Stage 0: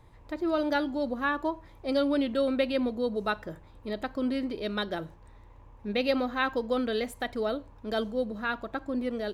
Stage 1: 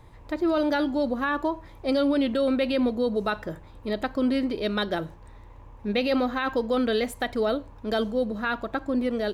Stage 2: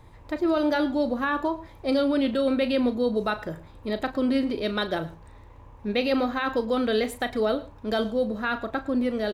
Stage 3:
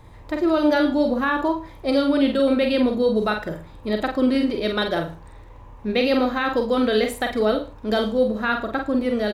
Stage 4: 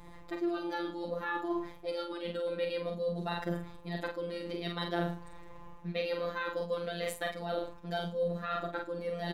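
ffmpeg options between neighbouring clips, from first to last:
-af "alimiter=limit=-22dB:level=0:latency=1:release=20,volume=5.5dB"
-filter_complex "[0:a]asplit=2[a][b];[b]adelay=37,volume=-11.5dB[c];[a][c]amix=inputs=2:normalize=0,aecho=1:1:109:0.106"
-filter_complex "[0:a]asplit=2[a][b];[b]adelay=47,volume=-5.5dB[c];[a][c]amix=inputs=2:normalize=0,volume=3.5dB"
-af "areverse,acompressor=threshold=-28dB:ratio=6,areverse,afftfilt=real='hypot(re,im)*cos(PI*b)':imag='0':win_size=1024:overlap=0.75"

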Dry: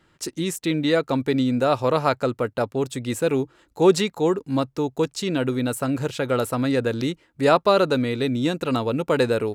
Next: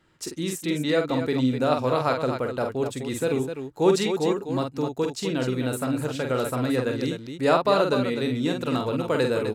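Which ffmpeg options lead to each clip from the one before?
-af "aecho=1:1:46.65|253.6:0.562|0.398,volume=-4dB"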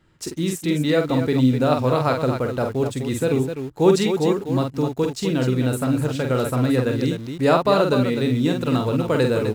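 -filter_complex "[0:a]lowshelf=f=190:g=9.5,asplit=2[a][b];[b]acrusher=bits=5:mix=0:aa=0.000001,volume=-12dB[c];[a][c]amix=inputs=2:normalize=0"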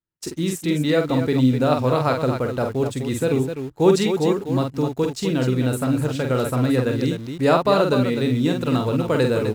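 -af "agate=range=-33dB:threshold=-32dB:ratio=3:detection=peak"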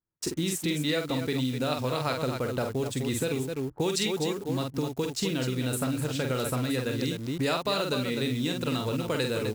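-filter_complex "[0:a]acrossover=split=2100[a][b];[a]acompressor=threshold=-26dB:ratio=10[c];[b]acrusher=bits=7:mix=0:aa=0.000001[d];[c][d]amix=inputs=2:normalize=0"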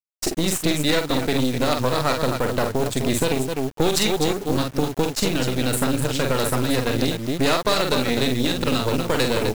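-af "acrusher=bits=7:mix=0:aa=0.000001,aeval=exprs='0.2*(cos(1*acos(clip(val(0)/0.2,-1,1)))-cos(1*PI/2))+0.0355*(cos(6*acos(clip(val(0)/0.2,-1,1)))-cos(6*PI/2))':c=same,volume=6.5dB"

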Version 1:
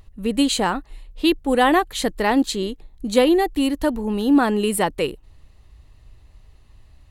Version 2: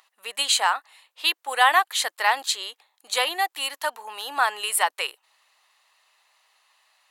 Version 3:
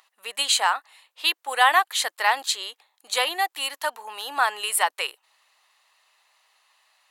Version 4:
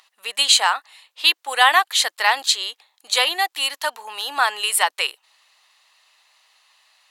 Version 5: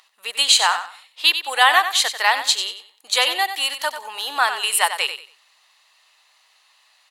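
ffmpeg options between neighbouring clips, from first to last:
-af "highpass=f=830:w=0.5412,highpass=f=830:w=1.3066,volume=3dB"
-af anull
-af "equalizer=f=4.3k:w=0.62:g=6,volume=1.5dB"
-af "aecho=1:1:93|186|279:0.316|0.0791|0.0198"

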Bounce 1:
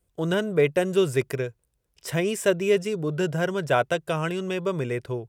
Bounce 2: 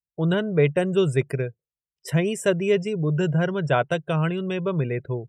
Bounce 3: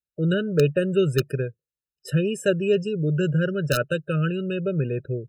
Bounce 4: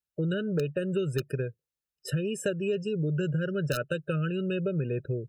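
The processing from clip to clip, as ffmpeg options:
-af "afftdn=nr=32:nf=-41,equalizer=f=150:w=2.4:g=8"
-af "aeval=exprs='(mod(2.82*val(0)+1,2)-1)/2.82':c=same,afftfilt=real='re*eq(mod(floor(b*sr/1024/610),2),0)':imag='im*eq(mod(floor(b*sr/1024/610),2),0)':win_size=1024:overlap=0.75"
-af "acompressor=threshold=-26dB:ratio=6"

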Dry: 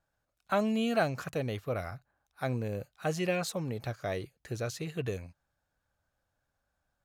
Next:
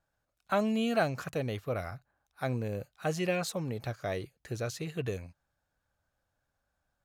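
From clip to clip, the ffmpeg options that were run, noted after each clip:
-af anull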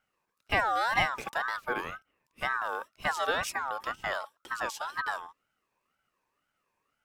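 -af "aeval=exprs='val(0)*sin(2*PI*1200*n/s+1200*0.2/2*sin(2*PI*2*n/s))':c=same,volume=4dB"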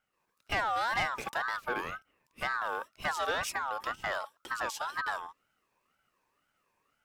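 -filter_complex "[0:a]asplit=2[a][b];[b]acompressor=threshold=-36dB:ratio=6,volume=-1.5dB[c];[a][c]amix=inputs=2:normalize=0,asoftclip=type=tanh:threshold=-21dB,dynaudnorm=f=110:g=3:m=6dB,volume=-8.5dB"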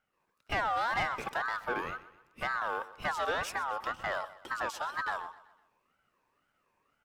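-filter_complex "[0:a]highshelf=f=3.4k:g=-8,asplit=2[a][b];[b]asoftclip=type=tanh:threshold=-39.5dB,volume=-11dB[c];[a][c]amix=inputs=2:normalize=0,aecho=1:1:126|252|378|504:0.141|0.0636|0.0286|0.0129"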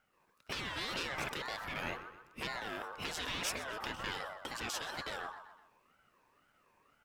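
-af "afftfilt=real='re*lt(hypot(re,im),0.0355)':imag='im*lt(hypot(re,im),0.0355)':win_size=1024:overlap=0.75,volume=5dB"

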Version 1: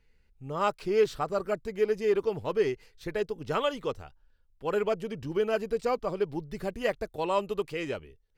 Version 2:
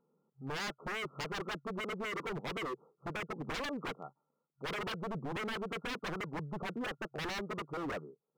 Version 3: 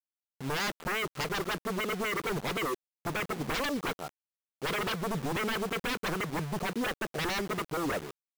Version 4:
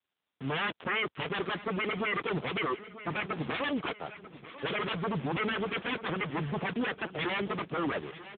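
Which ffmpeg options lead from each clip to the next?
-af "afftfilt=real='re*between(b*sr/4096,130,1400)':imag='im*between(b*sr/4096,130,1400)':win_size=4096:overlap=0.75,alimiter=limit=-22.5dB:level=0:latency=1:release=229,aeval=exprs='0.0168*(abs(mod(val(0)/0.0168+3,4)-2)-1)':c=same,volume=2.5dB"
-af "acrusher=bits=7:mix=0:aa=0.000001,volume=6.5dB"
-filter_complex "[0:a]acrossover=split=450[a][b];[b]crystalizer=i=2:c=0[c];[a][c]amix=inputs=2:normalize=0,aecho=1:1:941|1882|2823|3764:0.178|0.0836|0.0393|0.0185,volume=1.5dB" -ar 8000 -c:a libopencore_amrnb -b:a 6700

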